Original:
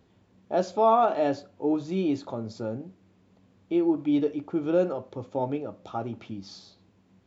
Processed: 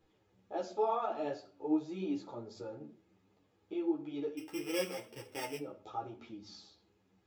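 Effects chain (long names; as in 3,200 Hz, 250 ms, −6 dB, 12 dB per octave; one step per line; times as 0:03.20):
0:04.37–0:05.58: samples sorted by size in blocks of 16 samples
parametric band 140 Hz −6 dB 1.5 octaves
in parallel at −2.5 dB: downward compressor, threshold −40 dBFS, peak gain reduction 21 dB
on the sum: flanger 0.37 Hz, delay 5.9 ms, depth 9.5 ms, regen +64%
convolution reverb RT60 0.45 s, pre-delay 3 ms, DRR 8.5 dB
string-ensemble chorus
level −5.5 dB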